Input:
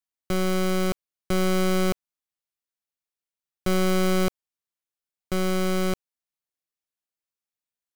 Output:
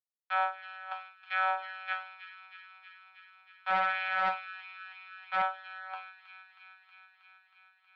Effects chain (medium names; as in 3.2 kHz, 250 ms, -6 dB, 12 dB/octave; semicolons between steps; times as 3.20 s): spectral noise reduction 8 dB; gate with hold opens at -27 dBFS; waveshaping leveller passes 5; chord resonator F#3 fifth, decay 0.34 s; LFO high-pass sine 1.8 Hz 850–1900 Hz; feedback echo behind a high-pass 318 ms, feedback 76%, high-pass 2 kHz, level -9 dB; mistuned SSB +200 Hz 280–3400 Hz; 3.70–5.42 s: loudspeaker Doppler distortion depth 0.1 ms; trim +6 dB